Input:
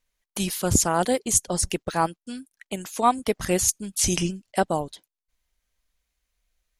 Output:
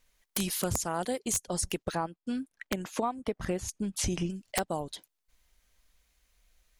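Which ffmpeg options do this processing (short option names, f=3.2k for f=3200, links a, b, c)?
-filter_complex "[0:a]asettb=1/sr,asplit=3[a][b][c];[a]atrim=end=1.954[d];[b]atrim=start=1.95:end=4.3,asetpts=PTS-STARTPTS,afade=t=in:d=0.004:c=qsin,afade=t=out:st=2.346:d=0.004:c=qsin,lowpass=f=1.5k:p=1[e];[c]atrim=start=4.296[f];[d][e]acrossfade=d=0.004:c1=hsin:c2=qsin[g];[g][f]acrossfade=d=0.004:c1=qsin:c2=hsin,acompressor=threshold=-36dB:ratio=8,aeval=exprs='(mod(18.8*val(0)+1,2)-1)/18.8':c=same,volume=7.5dB"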